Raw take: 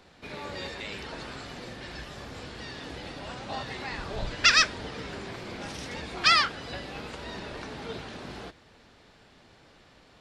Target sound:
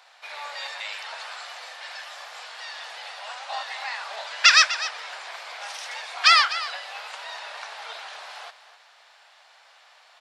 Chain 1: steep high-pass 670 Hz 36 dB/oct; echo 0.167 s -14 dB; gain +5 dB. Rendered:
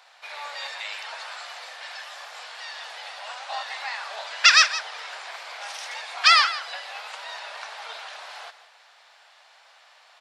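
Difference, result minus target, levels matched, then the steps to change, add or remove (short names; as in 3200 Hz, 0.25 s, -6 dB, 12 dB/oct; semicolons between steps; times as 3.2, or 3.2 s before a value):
echo 84 ms early
change: echo 0.251 s -14 dB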